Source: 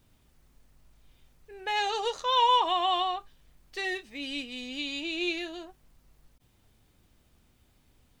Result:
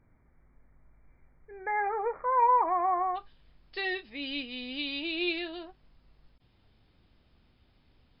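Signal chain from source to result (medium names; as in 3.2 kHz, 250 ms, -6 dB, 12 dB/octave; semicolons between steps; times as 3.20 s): brick-wall FIR low-pass 2.4 kHz, from 3.15 s 5.3 kHz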